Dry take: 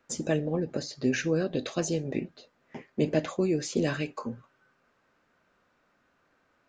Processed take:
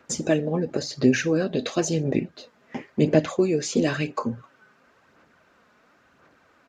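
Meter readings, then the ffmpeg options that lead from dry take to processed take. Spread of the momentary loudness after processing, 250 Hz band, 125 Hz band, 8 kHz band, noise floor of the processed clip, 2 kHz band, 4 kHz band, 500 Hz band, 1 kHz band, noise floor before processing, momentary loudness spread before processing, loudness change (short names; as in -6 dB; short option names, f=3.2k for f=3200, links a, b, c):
12 LU, +6.0 dB, +5.5 dB, +6.0 dB, -61 dBFS, +5.5 dB, +5.5 dB, +5.5 dB, +7.0 dB, -71 dBFS, 12 LU, +6.0 dB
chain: -filter_complex "[0:a]highpass=56,asplit=2[a][b];[b]acompressor=threshold=-40dB:ratio=6,volume=0.5dB[c];[a][c]amix=inputs=2:normalize=0,aphaser=in_gain=1:out_gain=1:delay=4.8:decay=0.38:speed=0.96:type=sinusoidal,aresample=32000,aresample=44100,volume=3dB"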